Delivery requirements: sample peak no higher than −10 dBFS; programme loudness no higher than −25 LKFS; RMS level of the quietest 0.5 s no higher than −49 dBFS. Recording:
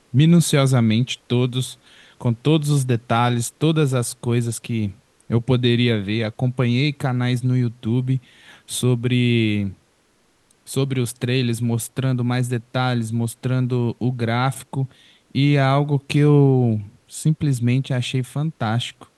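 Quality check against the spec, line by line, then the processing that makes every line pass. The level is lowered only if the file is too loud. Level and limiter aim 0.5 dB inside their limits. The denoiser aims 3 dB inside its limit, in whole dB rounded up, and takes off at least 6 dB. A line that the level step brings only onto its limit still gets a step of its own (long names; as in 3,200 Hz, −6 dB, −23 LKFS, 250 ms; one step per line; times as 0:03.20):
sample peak −4.5 dBFS: out of spec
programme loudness −20.5 LKFS: out of spec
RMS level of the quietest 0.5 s −61 dBFS: in spec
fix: level −5 dB
brickwall limiter −10.5 dBFS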